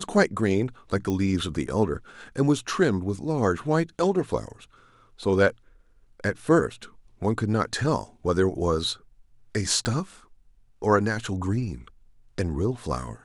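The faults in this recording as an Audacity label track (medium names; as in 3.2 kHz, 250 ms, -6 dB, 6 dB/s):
1.100000	1.100000	pop -17 dBFS
9.850000	9.850000	pop -15 dBFS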